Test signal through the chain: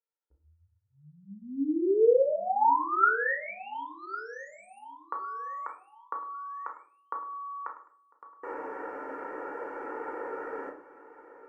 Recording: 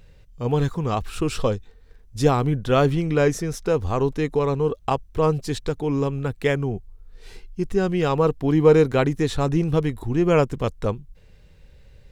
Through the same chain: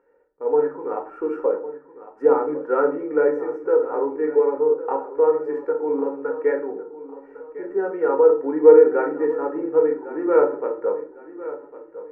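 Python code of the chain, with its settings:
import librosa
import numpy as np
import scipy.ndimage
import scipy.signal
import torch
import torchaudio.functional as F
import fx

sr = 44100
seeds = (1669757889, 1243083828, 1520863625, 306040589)

y = scipy.signal.sosfilt(scipy.signal.ellip(3, 1.0, 40, [270.0, 1600.0], 'bandpass', fs=sr, output='sos'), x)
y = y + 0.84 * np.pad(y, (int(2.2 * sr / 1000.0), 0))[:len(y)]
y = fx.echo_feedback(y, sr, ms=1104, feedback_pct=34, wet_db=-15.0)
y = fx.room_shoebox(y, sr, seeds[0], volume_m3=360.0, walls='furnished', distance_m=1.7)
y = y * librosa.db_to_amplitude(-4.5)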